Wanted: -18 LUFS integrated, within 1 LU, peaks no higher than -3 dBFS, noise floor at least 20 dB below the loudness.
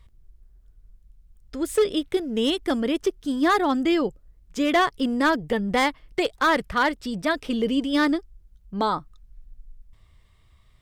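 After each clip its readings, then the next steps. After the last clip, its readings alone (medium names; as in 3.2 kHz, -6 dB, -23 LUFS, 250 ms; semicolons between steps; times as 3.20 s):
clipped samples 0.8%; clipping level -14.0 dBFS; loudness -24.0 LUFS; peak level -14.0 dBFS; loudness target -18.0 LUFS
-> clip repair -14 dBFS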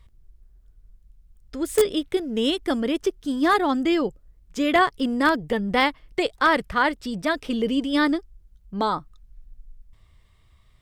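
clipped samples 0.0%; loudness -23.0 LUFS; peak level -5.0 dBFS; loudness target -18.0 LUFS
-> trim +5 dB; peak limiter -3 dBFS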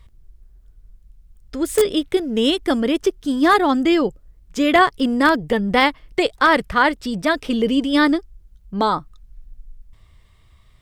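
loudness -18.5 LUFS; peak level -3.0 dBFS; noise floor -52 dBFS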